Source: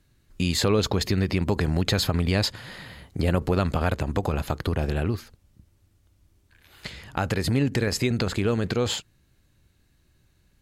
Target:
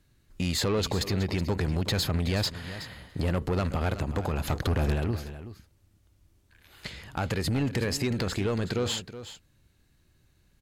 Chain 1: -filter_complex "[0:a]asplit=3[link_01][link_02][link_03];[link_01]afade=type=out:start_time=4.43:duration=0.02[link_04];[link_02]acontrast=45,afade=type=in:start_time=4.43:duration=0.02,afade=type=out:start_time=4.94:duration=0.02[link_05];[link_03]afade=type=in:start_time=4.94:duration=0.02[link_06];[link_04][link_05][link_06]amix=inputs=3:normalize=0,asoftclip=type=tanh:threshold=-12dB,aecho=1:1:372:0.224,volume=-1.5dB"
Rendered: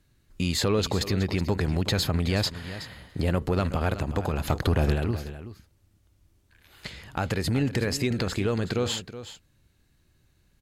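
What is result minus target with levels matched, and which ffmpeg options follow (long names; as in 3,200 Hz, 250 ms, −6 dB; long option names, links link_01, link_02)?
soft clipping: distortion −9 dB
-filter_complex "[0:a]asplit=3[link_01][link_02][link_03];[link_01]afade=type=out:start_time=4.43:duration=0.02[link_04];[link_02]acontrast=45,afade=type=in:start_time=4.43:duration=0.02,afade=type=out:start_time=4.94:duration=0.02[link_05];[link_03]afade=type=in:start_time=4.94:duration=0.02[link_06];[link_04][link_05][link_06]amix=inputs=3:normalize=0,asoftclip=type=tanh:threshold=-19.5dB,aecho=1:1:372:0.224,volume=-1.5dB"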